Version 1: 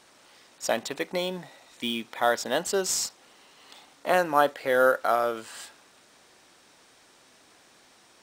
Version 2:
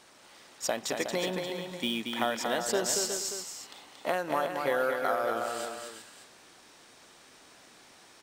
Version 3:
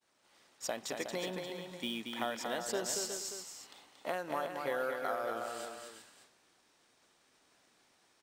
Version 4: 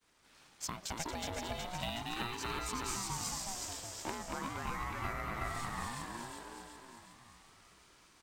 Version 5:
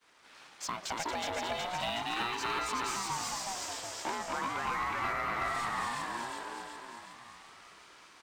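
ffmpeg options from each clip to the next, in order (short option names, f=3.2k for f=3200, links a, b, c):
-af "acompressor=threshold=-26dB:ratio=6,aecho=1:1:230|366|474|582:0.562|0.398|0.119|0.224"
-af "agate=range=-33dB:threshold=-49dB:ratio=3:detection=peak,volume=-7dB"
-filter_complex "[0:a]acompressor=threshold=-41dB:ratio=6,asplit=2[a][b];[b]aecho=0:1:369|738|1107|1476|1845|2214|2583:0.708|0.382|0.206|0.111|0.0602|0.0325|0.0176[c];[a][c]amix=inputs=2:normalize=0,aeval=exprs='val(0)*sin(2*PI*470*n/s+470*0.4/0.38*sin(2*PI*0.38*n/s))':c=same,volume=6.5dB"
-filter_complex "[0:a]asplit=2[a][b];[b]highpass=f=720:p=1,volume=19dB,asoftclip=type=tanh:threshold=-18.5dB[c];[a][c]amix=inputs=2:normalize=0,lowpass=f=2.9k:p=1,volume=-6dB,volume=-2.5dB"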